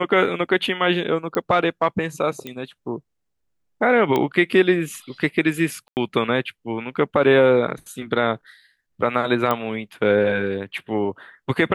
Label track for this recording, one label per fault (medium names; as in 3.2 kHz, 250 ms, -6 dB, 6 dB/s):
1.350000	1.350000	pop -11 dBFS
2.470000	2.470000	pop -17 dBFS
4.160000	4.160000	pop -9 dBFS
5.880000	5.970000	dropout 89 ms
9.510000	9.510000	pop -8 dBFS